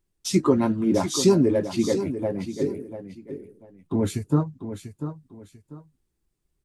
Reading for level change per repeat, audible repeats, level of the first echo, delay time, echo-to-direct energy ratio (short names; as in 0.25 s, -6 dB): -11.0 dB, 2, -10.5 dB, 0.693 s, -10.0 dB